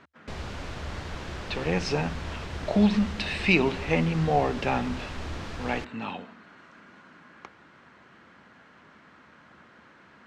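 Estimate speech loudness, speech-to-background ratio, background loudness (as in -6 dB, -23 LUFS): -27.0 LUFS, 11.0 dB, -38.0 LUFS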